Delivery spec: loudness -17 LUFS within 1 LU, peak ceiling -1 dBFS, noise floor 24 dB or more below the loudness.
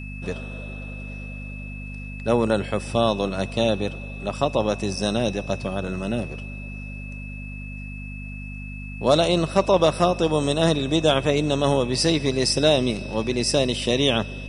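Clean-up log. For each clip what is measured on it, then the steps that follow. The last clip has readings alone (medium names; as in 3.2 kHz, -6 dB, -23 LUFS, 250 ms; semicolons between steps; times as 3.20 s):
hum 50 Hz; highest harmonic 250 Hz; hum level -33 dBFS; steady tone 2.6 kHz; tone level -39 dBFS; loudness -22.5 LUFS; peak level -5.5 dBFS; loudness target -17.0 LUFS
-> de-hum 50 Hz, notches 5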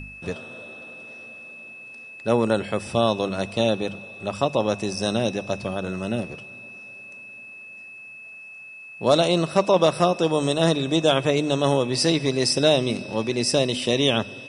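hum not found; steady tone 2.6 kHz; tone level -39 dBFS
-> band-stop 2.6 kHz, Q 30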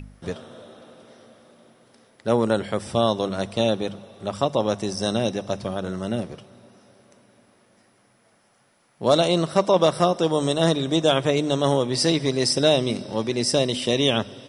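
steady tone not found; loudness -22.5 LUFS; peak level -5.5 dBFS; loudness target -17.0 LUFS
-> trim +5.5 dB; peak limiter -1 dBFS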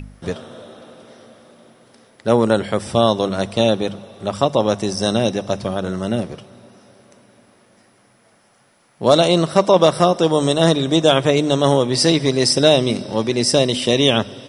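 loudness -17.0 LUFS; peak level -1.0 dBFS; noise floor -56 dBFS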